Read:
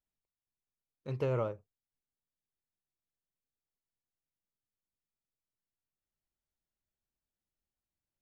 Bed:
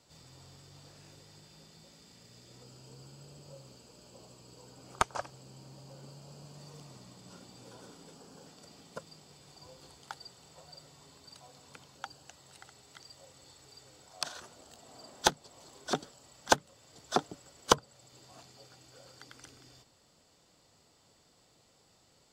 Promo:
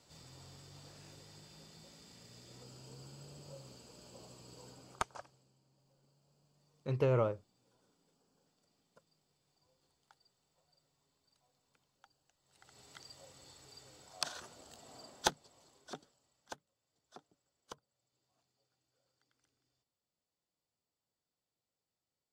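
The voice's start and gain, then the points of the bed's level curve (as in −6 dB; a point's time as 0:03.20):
5.80 s, +2.0 dB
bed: 0:04.69 −0.5 dB
0:05.61 −22.5 dB
0:12.39 −22.5 dB
0:12.80 −1.5 dB
0:14.96 −1.5 dB
0:16.78 −27 dB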